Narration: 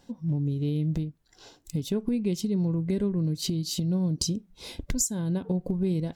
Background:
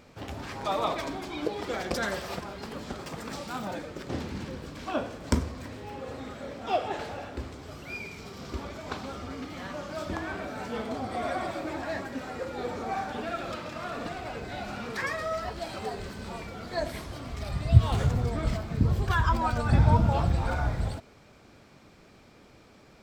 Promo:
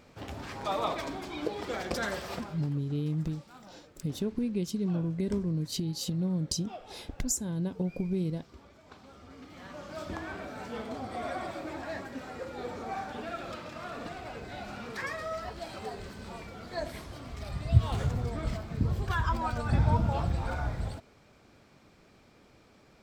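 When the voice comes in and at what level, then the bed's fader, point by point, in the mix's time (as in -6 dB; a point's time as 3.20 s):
2.30 s, -4.0 dB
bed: 2.41 s -2.5 dB
2.81 s -17 dB
8.91 s -17 dB
9.97 s -4.5 dB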